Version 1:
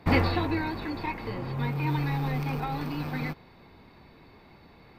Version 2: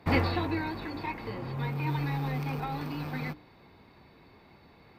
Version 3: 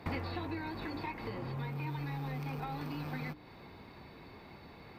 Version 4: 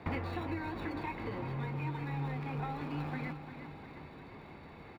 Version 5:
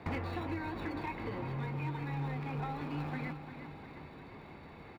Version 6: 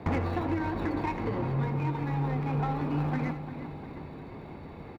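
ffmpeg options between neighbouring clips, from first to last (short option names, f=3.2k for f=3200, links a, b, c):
-af "highpass=41,bandreject=f=60:t=h:w=6,bandreject=f=120:t=h:w=6,bandreject=f=180:t=h:w=6,bandreject=f=240:t=h:w=6,bandreject=f=300:t=h:w=6,volume=-2.5dB"
-af "acompressor=threshold=-42dB:ratio=4,volume=4dB"
-filter_complex "[0:a]acrossover=split=690|4000[a][b][c];[c]acrusher=samples=28:mix=1:aa=0.000001[d];[a][b][d]amix=inputs=3:normalize=0,aecho=1:1:351|702|1053|1404|1755|2106|2457:0.299|0.17|0.097|0.0553|0.0315|0.018|0.0102,volume=1dB"
-af "volume=30dB,asoftclip=hard,volume=-30dB"
-filter_complex "[0:a]asplit=2[a][b];[b]adynamicsmooth=sensitivity=7:basefreq=860,volume=2dB[c];[a][c]amix=inputs=2:normalize=0,aecho=1:1:81:0.224,volume=1.5dB"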